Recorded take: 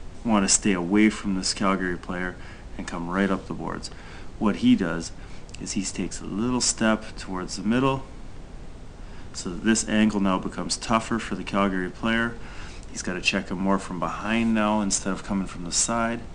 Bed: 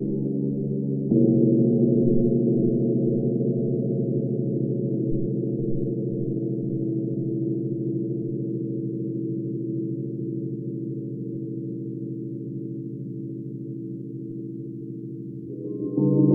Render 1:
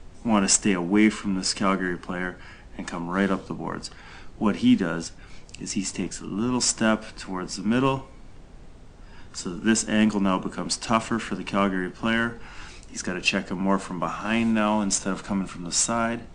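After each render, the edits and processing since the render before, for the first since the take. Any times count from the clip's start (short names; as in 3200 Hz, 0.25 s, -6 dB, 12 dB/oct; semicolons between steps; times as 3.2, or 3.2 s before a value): noise print and reduce 6 dB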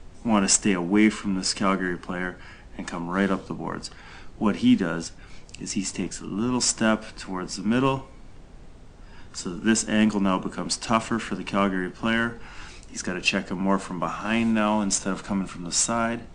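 nothing audible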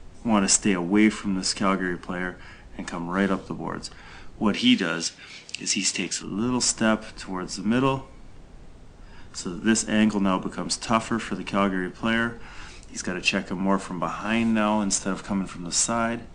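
4.54–6.23 weighting filter D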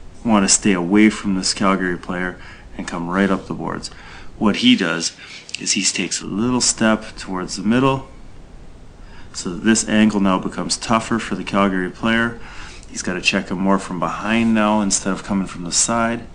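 gain +6.5 dB; limiter -1 dBFS, peak gain reduction 3 dB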